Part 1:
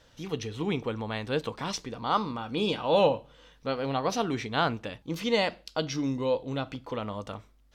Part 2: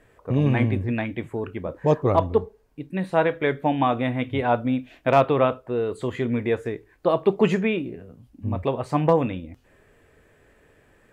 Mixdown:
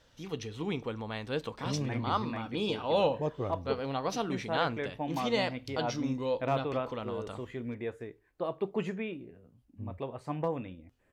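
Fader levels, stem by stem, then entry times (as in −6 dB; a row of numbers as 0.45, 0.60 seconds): −4.5, −13.5 decibels; 0.00, 1.35 seconds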